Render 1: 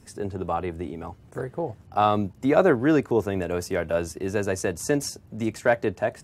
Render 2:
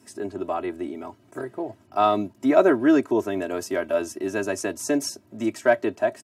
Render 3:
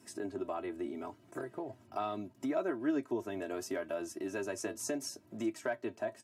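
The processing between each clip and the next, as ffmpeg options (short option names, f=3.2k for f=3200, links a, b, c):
-af "highpass=f=130:w=0.5412,highpass=f=130:w=1.3066,aecho=1:1:3.1:0.82,volume=-1.5dB"
-af "acompressor=threshold=-33dB:ratio=2.5,flanger=delay=5.8:depth=3.3:regen=60:speed=0.74:shape=sinusoidal"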